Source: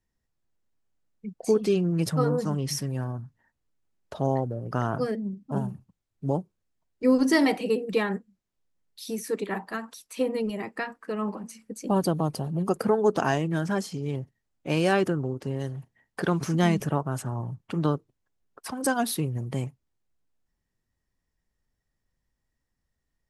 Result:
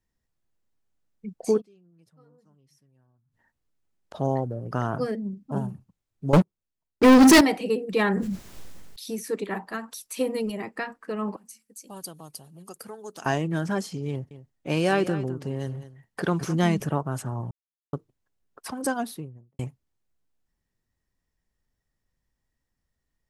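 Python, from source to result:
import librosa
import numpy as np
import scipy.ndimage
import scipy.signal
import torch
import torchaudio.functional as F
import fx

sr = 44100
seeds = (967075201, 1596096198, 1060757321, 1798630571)

y = fx.gate_flip(x, sr, shuts_db=-30.0, range_db=-34, at=(1.6, 4.13), fade=0.02)
y = fx.leveller(y, sr, passes=5, at=(6.33, 7.41))
y = fx.sustainer(y, sr, db_per_s=22.0, at=(7.98, 9.13), fade=0.02)
y = fx.high_shelf(y, sr, hz=5500.0, db=10.0, at=(9.92, 10.52))
y = fx.pre_emphasis(y, sr, coefficient=0.9, at=(11.36, 13.26))
y = fx.echo_single(y, sr, ms=208, db=-14.0, at=(14.1, 16.54))
y = fx.studio_fade_out(y, sr, start_s=18.68, length_s=0.91)
y = fx.edit(y, sr, fx.silence(start_s=17.51, length_s=0.42), tone=tone)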